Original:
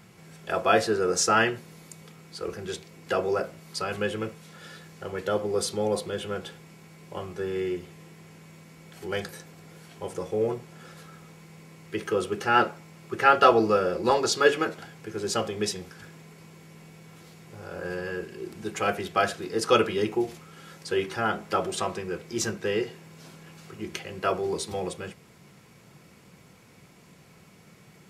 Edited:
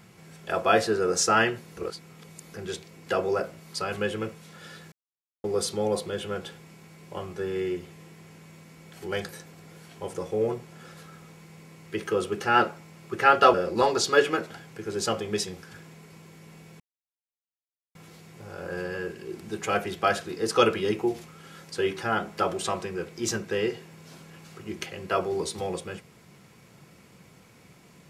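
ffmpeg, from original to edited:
ffmpeg -i in.wav -filter_complex "[0:a]asplit=7[link_01][link_02][link_03][link_04][link_05][link_06][link_07];[link_01]atrim=end=1.772[link_08];[link_02]atrim=start=1.768:end=2.542,asetpts=PTS-STARTPTS,areverse[link_09];[link_03]atrim=start=2.538:end=4.92,asetpts=PTS-STARTPTS,afade=type=out:start_time=2.378:duration=0.004:curve=hsin[link_10];[link_04]atrim=start=4.92:end=5.44,asetpts=PTS-STARTPTS,volume=0[link_11];[link_05]atrim=start=5.44:end=13.542,asetpts=PTS-STARTPTS,afade=type=in:duration=0.004:curve=hsin[link_12];[link_06]atrim=start=13.818:end=17.08,asetpts=PTS-STARTPTS,afade=type=out:start_time=3.258:duration=0.004:curve=hsin,apad=pad_dur=1.15[link_13];[link_07]atrim=start=17.08,asetpts=PTS-STARTPTS,afade=type=in:duration=0.004:curve=hsin[link_14];[link_08][link_09]acrossfade=duration=0.004:curve1=hsin:curve2=hsin[link_15];[link_10][link_11][link_12]concat=n=3:v=0:a=1[link_16];[link_15][link_16]acrossfade=duration=0.004:curve1=hsin:curve2=hsin[link_17];[link_13][link_14]concat=n=2:v=0:a=1[link_18];[link_17][link_18]acrossfade=duration=0.004:curve1=hsin:curve2=hsin" out.wav

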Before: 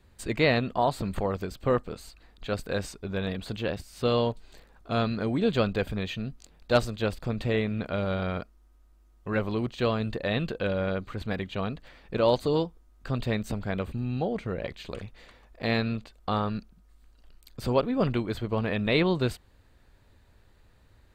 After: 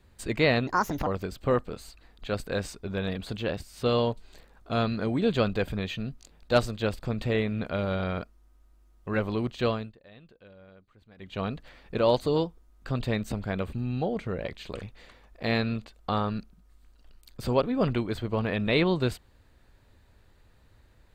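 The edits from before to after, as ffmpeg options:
ffmpeg -i in.wav -filter_complex "[0:a]asplit=5[link_01][link_02][link_03][link_04][link_05];[link_01]atrim=end=0.674[link_06];[link_02]atrim=start=0.67:end=1.26,asetpts=PTS-STARTPTS,asetrate=65709,aresample=44100,atrim=end_sample=17462,asetpts=PTS-STARTPTS[link_07];[link_03]atrim=start=1.256:end=10.12,asetpts=PTS-STARTPTS,afade=type=out:start_time=8.614:duration=0.25:silence=0.0630957[link_08];[link_04]atrim=start=10.12:end=11.36,asetpts=PTS-STARTPTS,volume=-24dB[link_09];[link_05]atrim=start=11.36,asetpts=PTS-STARTPTS,afade=type=in:duration=0.25:silence=0.0630957[link_10];[link_06][link_07]acrossfade=duration=0.004:curve1=hsin:curve2=hsin[link_11];[link_08][link_09][link_10]concat=n=3:v=0:a=1[link_12];[link_11][link_12]acrossfade=duration=0.004:curve1=hsin:curve2=hsin" out.wav

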